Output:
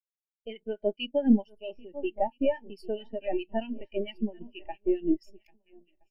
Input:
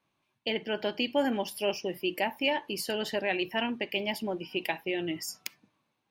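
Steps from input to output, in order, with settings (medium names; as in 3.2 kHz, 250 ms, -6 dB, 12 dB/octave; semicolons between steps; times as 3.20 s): partial rectifier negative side -7 dB; shuffle delay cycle 1320 ms, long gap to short 1.5:1, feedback 39%, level -12 dB; waveshaping leveller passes 2; harmonic tremolo 4.5 Hz, depth 70%, crossover 1.5 kHz; spectral contrast expander 2.5:1; trim +1.5 dB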